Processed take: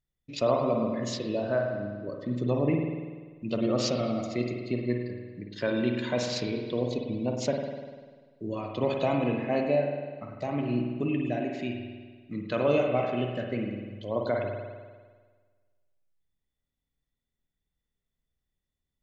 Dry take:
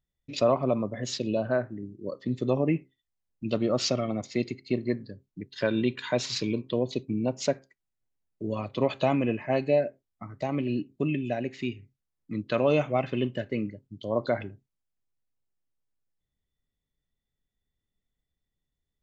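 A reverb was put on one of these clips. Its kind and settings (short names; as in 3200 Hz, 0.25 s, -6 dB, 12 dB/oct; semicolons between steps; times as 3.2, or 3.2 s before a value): spring tank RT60 1.5 s, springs 49 ms, chirp 70 ms, DRR 1.5 dB; gain -3 dB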